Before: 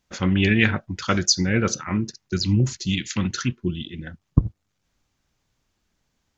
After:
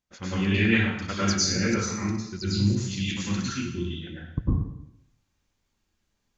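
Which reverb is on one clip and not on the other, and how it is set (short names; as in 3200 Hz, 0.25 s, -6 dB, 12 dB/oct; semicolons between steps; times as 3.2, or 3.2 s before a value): plate-style reverb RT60 0.77 s, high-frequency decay 1×, pre-delay 90 ms, DRR -9 dB; gain -13 dB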